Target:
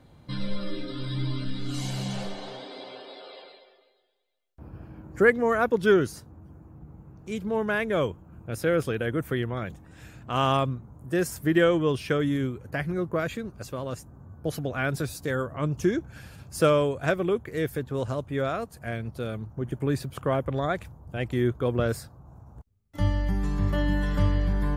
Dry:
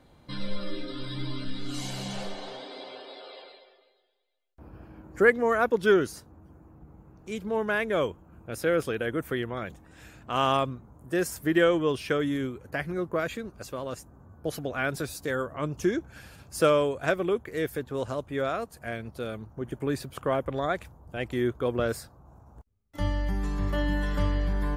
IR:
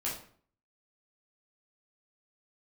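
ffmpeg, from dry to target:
-af "equalizer=f=120:w=0.88:g=7.5"

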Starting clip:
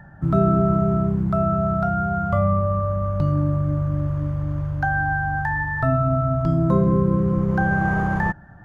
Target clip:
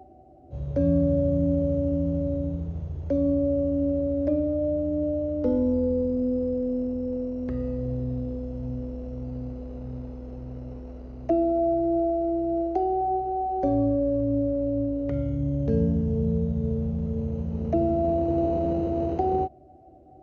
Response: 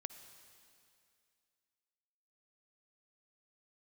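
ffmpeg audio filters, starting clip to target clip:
-af "highpass=330,asetrate=18846,aresample=44100"

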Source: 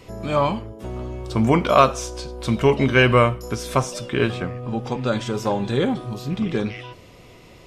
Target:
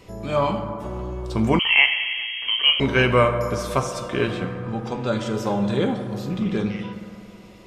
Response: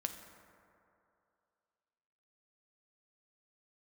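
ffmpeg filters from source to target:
-filter_complex "[1:a]atrim=start_sample=2205[a];[0:a][a]afir=irnorm=-1:irlink=0,asettb=1/sr,asplit=3[b][c][d];[b]atrim=end=1.594[e];[c]atrim=start=1.59:end=2.8,asetpts=PTS-STARTPTS,afade=t=in:d=0.004:c=qsin,afade=t=out:st=1.206:d=0.004:c=qsin,lowpass=f=2.8k:t=q:w=0.5098,lowpass=f=2.8k:t=q:w=0.6013,lowpass=f=2.8k:t=q:w=0.9,lowpass=f=2.8k:t=q:w=2.563,afreqshift=-3300[f];[d]atrim=start=2.796[g];[e][f]acrossfade=d=0.004:c1=hsin:c2=qsin[h];[h][g]acrossfade=d=0.004:c1=qsin:c2=hsin,volume=-1.5dB"

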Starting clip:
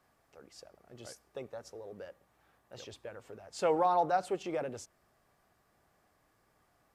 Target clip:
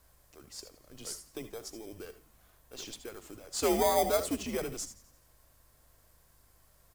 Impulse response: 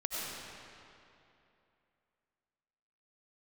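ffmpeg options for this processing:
-filter_complex "[0:a]aeval=exprs='val(0)+0.000631*(sin(2*PI*50*n/s)+sin(2*PI*2*50*n/s)/2+sin(2*PI*3*50*n/s)/3+sin(2*PI*4*50*n/s)/4+sin(2*PI*5*50*n/s)/5)':c=same,afreqshift=-110,asplit=2[a][b];[b]acrusher=samples=16:mix=1:aa=0.000001,volume=-10.5dB[c];[a][c]amix=inputs=2:normalize=0,asplit=6[d][e][f][g][h][i];[e]adelay=86,afreqshift=-74,volume=-18.5dB[j];[f]adelay=172,afreqshift=-148,volume=-23.9dB[k];[g]adelay=258,afreqshift=-222,volume=-29.2dB[l];[h]adelay=344,afreqshift=-296,volume=-34.6dB[m];[i]adelay=430,afreqshift=-370,volume=-39.9dB[n];[d][j][k][l][m][n]amix=inputs=6:normalize=0,crystalizer=i=4:c=0[o];[1:a]atrim=start_sample=2205,atrim=end_sample=3528[p];[o][p]afir=irnorm=-1:irlink=0"

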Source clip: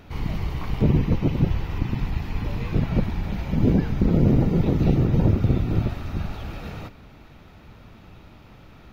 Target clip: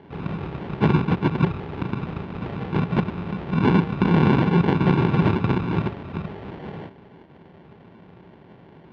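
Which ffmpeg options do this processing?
-af "acrusher=samples=35:mix=1:aa=0.000001,highpass=130,equalizer=f=170:t=q:w=4:g=6,equalizer=f=390:t=q:w=4:g=7,equalizer=f=860:t=q:w=4:g=5,lowpass=f=3.3k:w=0.5412,lowpass=f=3.3k:w=1.3066"

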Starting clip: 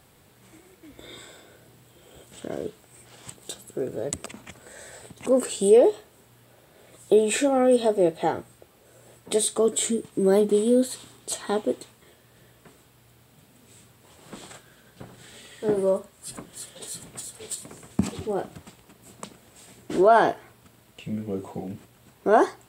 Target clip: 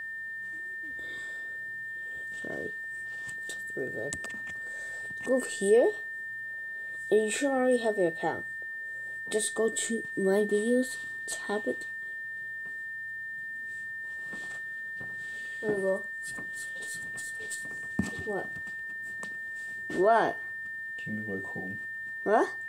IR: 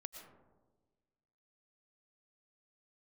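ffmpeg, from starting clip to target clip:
-af "aeval=exprs='val(0)+0.0355*sin(2*PI*1800*n/s)':c=same,volume=-6.5dB"

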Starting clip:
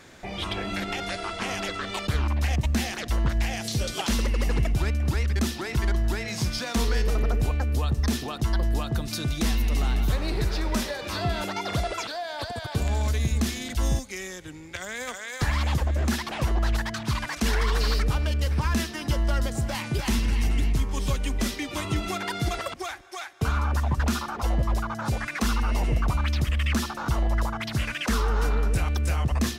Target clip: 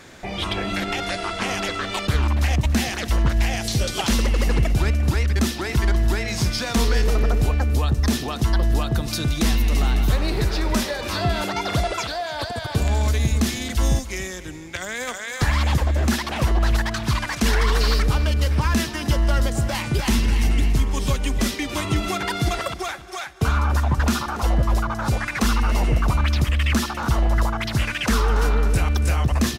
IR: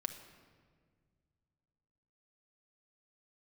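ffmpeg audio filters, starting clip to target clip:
-af "aecho=1:1:283|566|849:0.158|0.0618|0.0241,volume=5dB"

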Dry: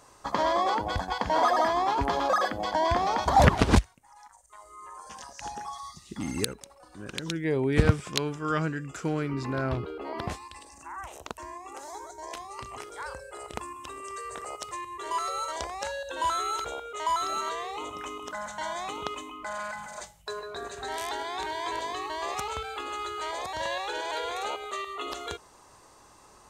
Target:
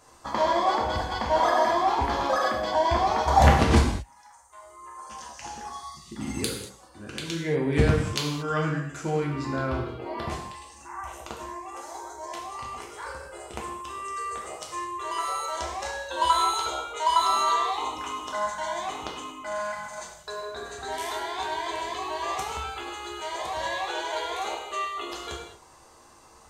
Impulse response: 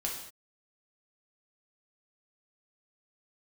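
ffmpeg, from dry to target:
-filter_complex "[0:a]asettb=1/sr,asplit=3[a][b][c];[a]atrim=end=16.084[d];[b]atrim=start=16.08:end=18.48,asetpts=PTS-STARTPTS,afade=t=in:d=0.004:c=qsin,afade=t=out:st=2.396:d=0.004:c=qsin,equalizer=f=1k:t=o:w=0.67:g=8,equalizer=f=4k:t=o:w=0.67:g=8,equalizer=f=10k:t=o:w=0.67:g=3[e];[c]atrim=start=18.476[f];[d][e]acrossfade=d=0.004:c1=hsin:c2=qsin[g];[g][f]acrossfade=d=0.004:c1=qsin:c2=hsin[h];[1:a]atrim=start_sample=2205[i];[h][i]afir=irnorm=-1:irlink=0,volume=-1.5dB"

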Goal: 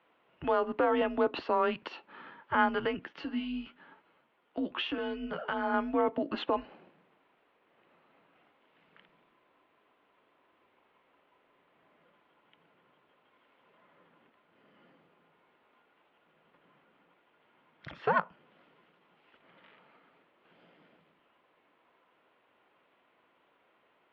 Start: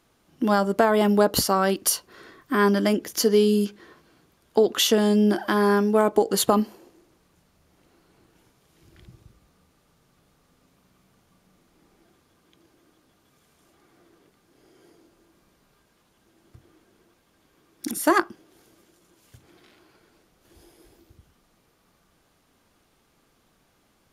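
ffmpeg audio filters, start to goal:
-filter_complex "[0:a]alimiter=limit=-14.5dB:level=0:latency=1:release=226,asettb=1/sr,asplit=3[a][b][c];[a]atrim=end=3.064[d];[b]atrim=start=3.06:end=5.74,asetpts=PTS-STARTPTS,afade=t=in:d=0.004:c=qsin,afade=t=out:st=2.676:d=0.004:c=qsin,flanger=delay=7.7:depth=6.5:regen=45:speed=1:shape=sinusoidal[e];[c]atrim=start=5.736[f];[d][e]acrossfade=d=0.004:c1=hsin:c2=qsin[g];[g][f]acrossfade=d=0.004:c1=qsin:c2=hsin,highpass=f=500:t=q:w=0.5412,highpass=f=500:t=q:w=1.307,lowpass=f=3.2k:t=q:w=0.5176,lowpass=f=3.2k:t=q:w=0.7071,lowpass=f=3.2k:t=q:w=1.932,afreqshift=-170"

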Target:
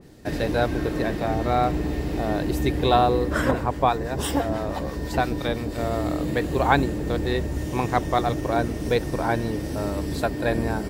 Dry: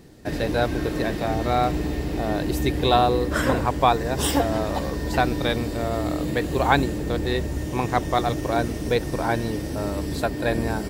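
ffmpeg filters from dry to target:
-filter_complex "[0:a]asettb=1/sr,asplit=3[a][b][c];[a]atrim=end=3.514[d];[b]atrim=start=3.51:end=5.78,asetpts=PTS-STARTPTS,afade=t=in:d=0.004:c=qsin,afade=t=out:st=2.266:d=0.004:c=qsin,acrossover=split=970[e][f];[e]aeval=exprs='val(0)*(1-0.5/2+0.5/2*cos(2*PI*6*n/s))':c=same[g];[f]aeval=exprs='val(0)*(1-0.5/2-0.5/2*cos(2*PI*6*n/s))':c=same[h];[g][h]amix=inputs=2:normalize=0[i];[c]atrim=start=5.776[j];[d][i]acrossfade=d=0.004:c1=hsin:c2=qsin[k];[k][j]acrossfade=d=0.004:c1=qsin:c2=hsin,adynamicequalizer=threshold=0.0112:dfrequency=2400:dqfactor=0.7:tfrequency=2400:tqfactor=0.7:attack=5:release=100:ratio=0.375:range=2.5:mode=cutabove:tftype=highshelf"

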